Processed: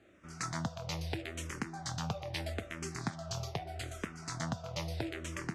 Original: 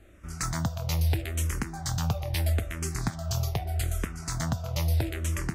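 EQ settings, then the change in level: band-pass 160–6100 Hz; -4.0 dB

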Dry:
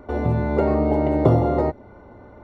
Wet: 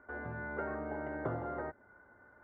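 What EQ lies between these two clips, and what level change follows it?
band-pass filter 1.6 kHz, Q 16; tilt EQ -4.5 dB/octave; +9.0 dB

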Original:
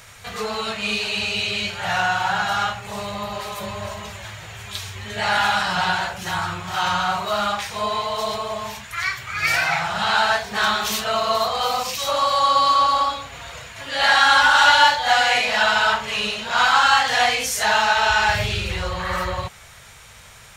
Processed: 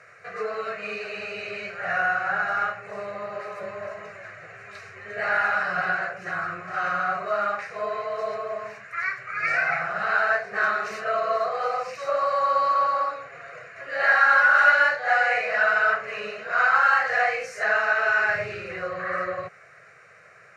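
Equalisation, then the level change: high-pass 160 Hz 24 dB/octave; low-pass 2.6 kHz 12 dB/octave; static phaser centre 910 Hz, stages 6; 0.0 dB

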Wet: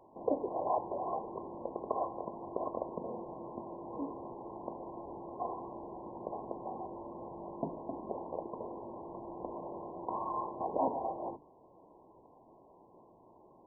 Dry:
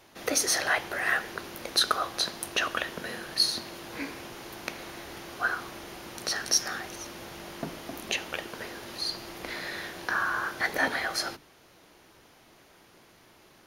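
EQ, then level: brick-wall FIR low-pass 1.1 kHz; bass shelf 180 Hz -10 dB; +1.5 dB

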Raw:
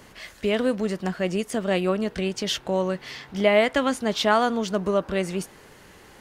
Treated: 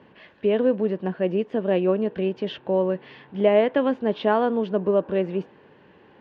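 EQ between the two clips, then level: dynamic bell 470 Hz, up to +5 dB, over -34 dBFS, Q 0.96; cabinet simulation 140–2600 Hz, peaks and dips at 700 Hz -5 dB, 1.3 kHz -10 dB, 2.1 kHz -10 dB; 0.0 dB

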